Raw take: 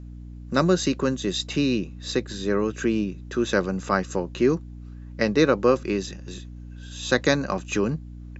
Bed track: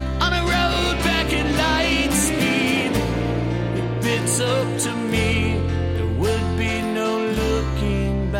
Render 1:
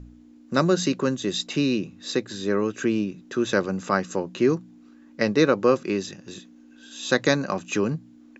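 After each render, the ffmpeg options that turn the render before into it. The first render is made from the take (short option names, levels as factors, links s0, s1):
-af "bandreject=f=60:t=h:w=4,bandreject=f=120:t=h:w=4,bandreject=f=180:t=h:w=4"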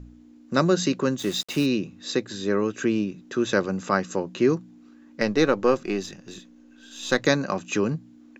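-filter_complex "[0:a]asplit=3[s0][s1][s2];[s0]afade=t=out:st=1.18:d=0.02[s3];[s1]acrusher=bits=5:mix=0:aa=0.5,afade=t=in:st=1.18:d=0.02,afade=t=out:st=1.65:d=0.02[s4];[s2]afade=t=in:st=1.65:d=0.02[s5];[s3][s4][s5]amix=inputs=3:normalize=0,asettb=1/sr,asplit=3[s6][s7][s8];[s6]atrim=end=5.214[s9];[s7]atrim=start=5.21:end=7.27,asetpts=PTS-STARTPTS,afade=t=in:d=0.004:c=qsin,afade=t=out:st=2.056:d=0.004:c=qsin,aeval=exprs='if(lt(val(0),0),0.708*val(0),val(0))':c=same[s10];[s8]atrim=start=7.266[s11];[s9][s10]acrossfade=d=0.004:c1=hsin:c2=qsin[s12];[s12][s11]acrossfade=d=0.004:c1=qsin:c2=hsin"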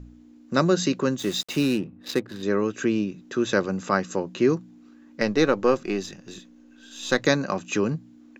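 -filter_complex "[0:a]asettb=1/sr,asplit=3[s0][s1][s2];[s0]atrim=end=1.634[s3];[s1]atrim=start=1.63:end=2.43,asetpts=PTS-STARTPTS,afade=t=in:d=0.004:c=qsin,afade=t=out:st=0.796:d=0.004:c=qsin,adynamicsmooth=sensitivity=7.5:basefreq=890[s4];[s2]atrim=start=2.426[s5];[s3][s4]acrossfade=d=0.004:c1=hsin:c2=qsin[s6];[s6][s5]acrossfade=d=0.004:c1=qsin:c2=hsin"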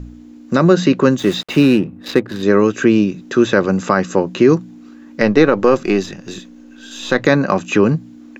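-filter_complex "[0:a]acrossover=split=3200[s0][s1];[s1]acompressor=threshold=0.00501:ratio=6[s2];[s0][s2]amix=inputs=2:normalize=0,alimiter=level_in=3.76:limit=0.891:release=50:level=0:latency=1"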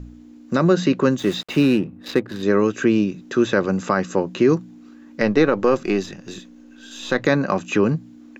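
-af "volume=0.562"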